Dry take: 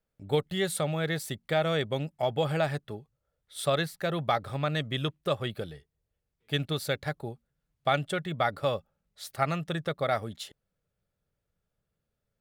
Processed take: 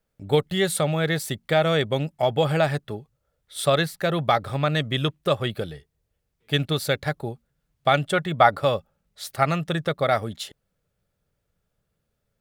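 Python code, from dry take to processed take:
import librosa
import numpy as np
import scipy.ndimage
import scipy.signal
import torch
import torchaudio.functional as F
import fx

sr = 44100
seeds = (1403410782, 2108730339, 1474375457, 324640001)

y = fx.dynamic_eq(x, sr, hz=920.0, q=0.99, threshold_db=-39.0, ratio=4.0, max_db=7, at=(8.12, 8.61))
y = F.gain(torch.from_numpy(y), 6.5).numpy()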